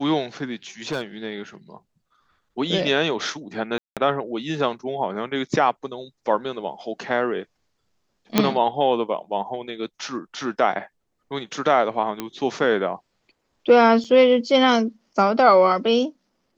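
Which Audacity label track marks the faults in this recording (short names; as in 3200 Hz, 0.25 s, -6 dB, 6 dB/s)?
0.920000	1.020000	clipped -20 dBFS
3.780000	3.970000	gap 0.187 s
8.380000	8.380000	pop -1 dBFS
12.200000	12.200000	pop -12 dBFS
14.040000	14.050000	gap 5.6 ms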